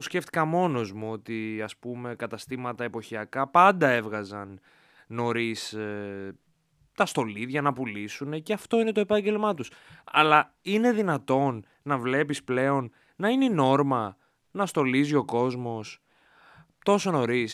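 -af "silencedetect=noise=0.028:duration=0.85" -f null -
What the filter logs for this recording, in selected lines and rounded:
silence_start: 15.90
silence_end: 16.86 | silence_duration: 0.96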